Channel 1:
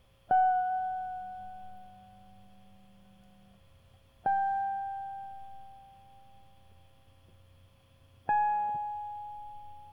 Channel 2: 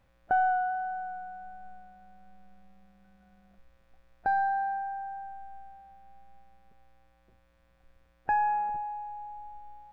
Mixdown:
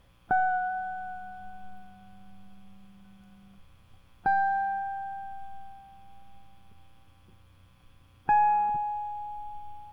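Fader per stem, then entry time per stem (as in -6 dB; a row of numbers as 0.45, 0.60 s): +0.5, +2.5 dB; 0.00, 0.00 s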